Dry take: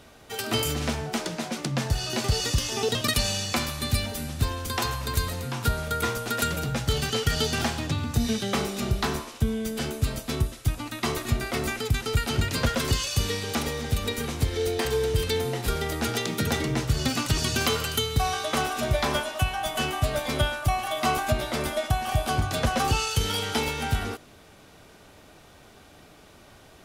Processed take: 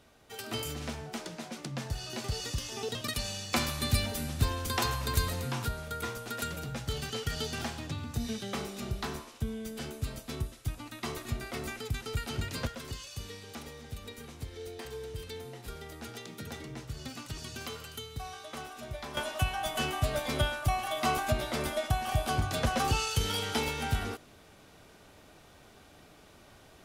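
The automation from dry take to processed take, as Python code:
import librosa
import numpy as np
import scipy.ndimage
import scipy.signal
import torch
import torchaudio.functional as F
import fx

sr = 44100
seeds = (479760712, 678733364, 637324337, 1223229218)

y = fx.gain(x, sr, db=fx.steps((0.0, -10.0), (3.53, -2.5), (5.65, -9.5), (12.67, -16.0), (19.17, -4.5)))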